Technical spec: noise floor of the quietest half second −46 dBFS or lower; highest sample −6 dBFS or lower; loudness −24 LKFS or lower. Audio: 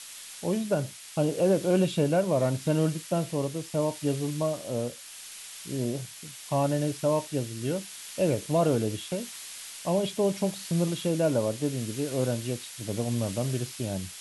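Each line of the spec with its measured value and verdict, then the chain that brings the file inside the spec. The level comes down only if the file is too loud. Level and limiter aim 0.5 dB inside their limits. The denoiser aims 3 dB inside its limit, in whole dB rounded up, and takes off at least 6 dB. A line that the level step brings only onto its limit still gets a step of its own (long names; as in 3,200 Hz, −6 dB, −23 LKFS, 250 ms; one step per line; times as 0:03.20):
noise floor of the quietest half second −44 dBFS: out of spec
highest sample −13.0 dBFS: in spec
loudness −28.5 LKFS: in spec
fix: broadband denoise 6 dB, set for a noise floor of −44 dBFS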